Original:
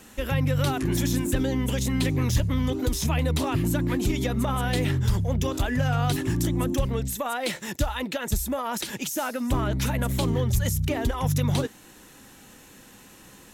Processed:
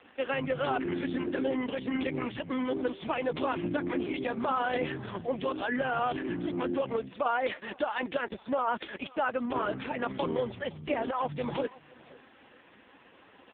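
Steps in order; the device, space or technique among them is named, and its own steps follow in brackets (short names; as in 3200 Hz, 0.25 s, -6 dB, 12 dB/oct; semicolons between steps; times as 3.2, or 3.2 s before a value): satellite phone (BPF 340–3300 Hz; echo 0.514 s -22.5 dB; gain +2 dB; AMR-NB 4.75 kbps 8000 Hz)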